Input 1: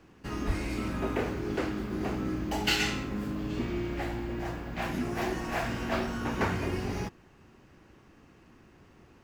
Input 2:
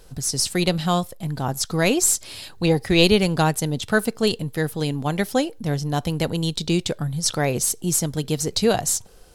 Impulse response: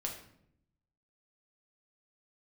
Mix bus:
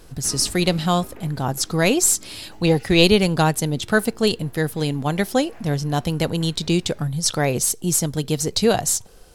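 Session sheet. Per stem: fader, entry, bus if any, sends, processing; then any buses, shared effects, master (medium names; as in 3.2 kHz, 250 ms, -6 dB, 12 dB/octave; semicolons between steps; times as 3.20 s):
+2.5 dB, 0.00 s, no send, compression 3:1, threshold -34 dBFS, peak gain reduction 9 dB; auto duck -15 dB, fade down 1.80 s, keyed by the second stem
+1.5 dB, 0.00 s, no send, none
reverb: none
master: none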